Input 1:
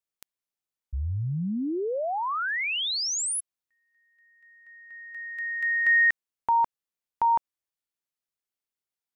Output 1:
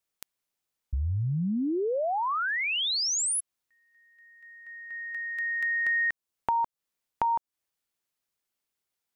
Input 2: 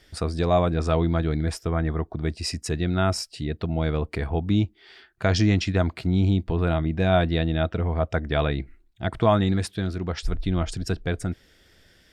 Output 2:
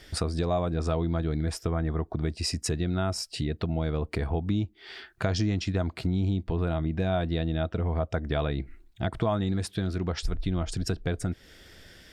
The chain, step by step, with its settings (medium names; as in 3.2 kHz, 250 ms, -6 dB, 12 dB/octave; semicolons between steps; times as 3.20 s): dynamic bell 2.1 kHz, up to -4 dB, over -40 dBFS, Q 1.1; compression 3:1, threshold -34 dBFS; trim +6 dB